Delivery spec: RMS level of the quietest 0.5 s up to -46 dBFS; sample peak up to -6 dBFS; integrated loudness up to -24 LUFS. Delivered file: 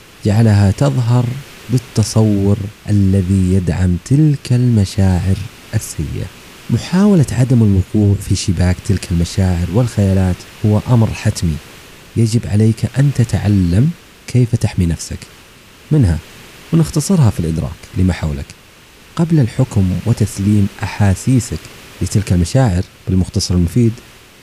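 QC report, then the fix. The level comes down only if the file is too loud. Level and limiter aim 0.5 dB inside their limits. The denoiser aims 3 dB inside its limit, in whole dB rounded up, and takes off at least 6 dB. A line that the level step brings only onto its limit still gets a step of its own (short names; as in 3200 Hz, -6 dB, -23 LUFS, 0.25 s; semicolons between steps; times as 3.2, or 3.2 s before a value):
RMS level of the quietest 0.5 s -42 dBFS: fail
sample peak -3.0 dBFS: fail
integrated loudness -15.0 LUFS: fail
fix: gain -9.5 dB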